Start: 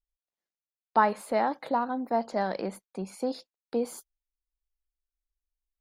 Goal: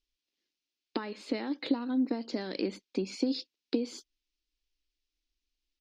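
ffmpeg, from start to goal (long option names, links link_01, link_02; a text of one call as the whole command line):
ffmpeg -i in.wav -af "bass=frequency=250:gain=1,treble=frequency=4000:gain=12,acompressor=threshold=-34dB:ratio=10,firequalizer=gain_entry='entry(170,0);entry(280,15);entry(680,-7);entry(2600,11);entry(5300,4);entry(10000,-29)':delay=0.05:min_phase=1" out.wav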